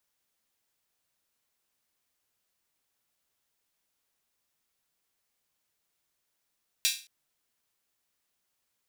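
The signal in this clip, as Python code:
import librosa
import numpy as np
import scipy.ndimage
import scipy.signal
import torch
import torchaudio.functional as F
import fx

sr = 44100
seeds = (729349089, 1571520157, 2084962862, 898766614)

y = fx.drum_hat_open(sr, length_s=0.22, from_hz=3100.0, decay_s=0.35)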